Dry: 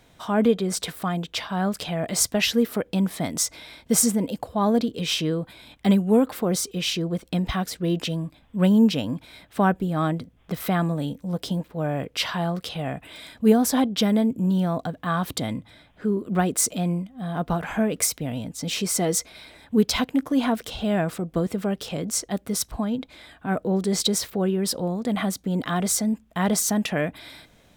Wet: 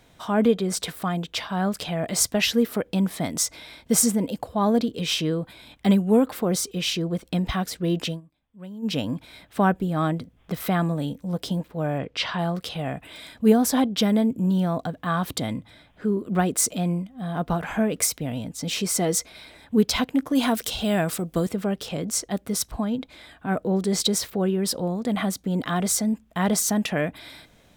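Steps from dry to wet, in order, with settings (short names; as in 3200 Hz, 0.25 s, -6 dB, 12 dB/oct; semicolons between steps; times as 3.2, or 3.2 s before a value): 8.09–8.94 dip -20.5 dB, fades 0.12 s; 11.98–12.39 LPF 5000 Hz 12 dB/oct; 20.35–21.49 high shelf 3700 Hz +12 dB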